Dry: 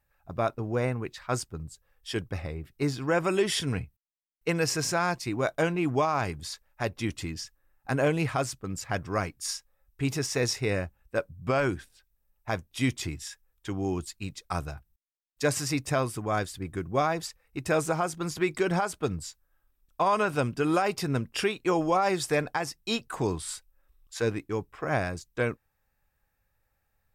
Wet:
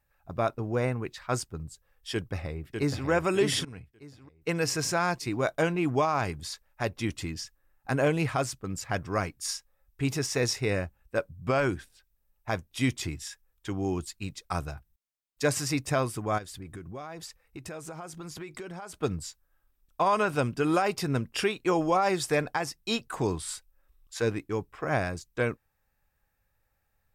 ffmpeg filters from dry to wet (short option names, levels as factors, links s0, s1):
-filter_complex "[0:a]asplit=2[s0][s1];[s1]afade=t=in:st=2.13:d=0.01,afade=t=out:st=3.08:d=0.01,aecho=0:1:600|1200|1800|2400:0.562341|0.196819|0.0688868|0.0241104[s2];[s0][s2]amix=inputs=2:normalize=0,asplit=3[s3][s4][s5];[s3]afade=t=out:st=16.37:d=0.02[s6];[s4]acompressor=threshold=0.0126:ratio=5:attack=3.2:release=140:knee=1:detection=peak,afade=t=in:st=16.37:d=0.02,afade=t=out:st=18.93:d=0.02[s7];[s5]afade=t=in:st=18.93:d=0.02[s8];[s6][s7][s8]amix=inputs=3:normalize=0,asplit=2[s9][s10];[s9]atrim=end=3.65,asetpts=PTS-STARTPTS,afade=t=out:st=3.646:d=0.004:c=hsin:silence=0.125893[s11];[s10]atrim=start=3.65,asetpts=PTS-STARTPTS,afade=t=in:d=1.54:c=qsin:silence=0.125893[s12];[s11][s12]concat=n=2:v=0:a=1"